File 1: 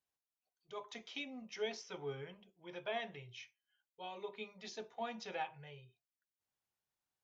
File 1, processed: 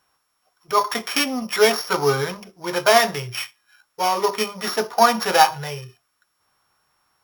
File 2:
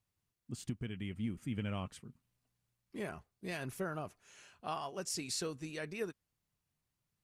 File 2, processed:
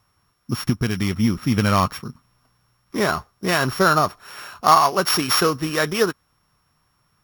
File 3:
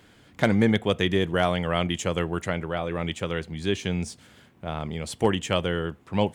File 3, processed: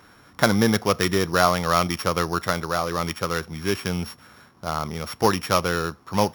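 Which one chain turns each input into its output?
sample sorter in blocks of 8 samples; bell 1200 Hz +12.5 dB 1 oct; normalise peaks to -1.5 dBFS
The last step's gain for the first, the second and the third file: +22.0, +18.5, +0.5 dB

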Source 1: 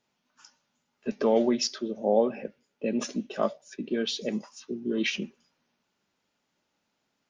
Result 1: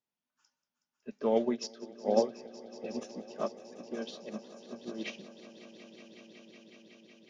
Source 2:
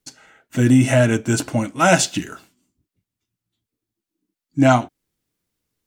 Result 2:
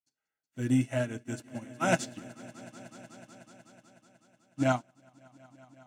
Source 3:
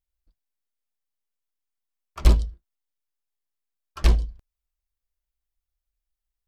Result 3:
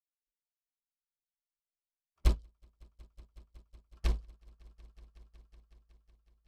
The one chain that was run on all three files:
on a send: swelling echo 0.185 s, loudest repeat 5, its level -12 dB; on the sum: upward expander 2.5:1, over -30 dBFS; normalise peaks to -12 dBFS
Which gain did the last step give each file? -1.0, -10.5, -9.0 dB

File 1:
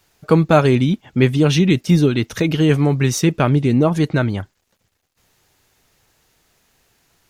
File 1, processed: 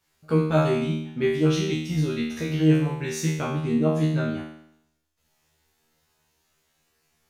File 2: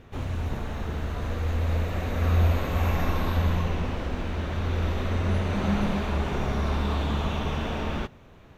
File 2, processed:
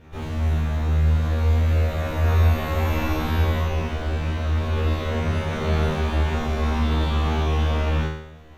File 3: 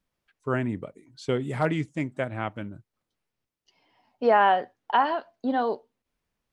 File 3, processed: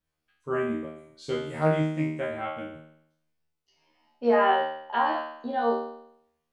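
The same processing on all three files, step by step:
resonator 78 Hz, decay 0.72 s, harmonics all, mix 100%; normalise peaks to -9 dBFS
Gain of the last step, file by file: +3.5, +16.0, +11.0 dB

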